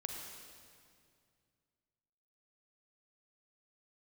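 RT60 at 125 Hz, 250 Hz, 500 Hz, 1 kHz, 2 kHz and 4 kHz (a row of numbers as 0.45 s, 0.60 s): 3.1 s, 2.7 s, 2.3 s, 2.1 s, 2.0 s, 1.9 s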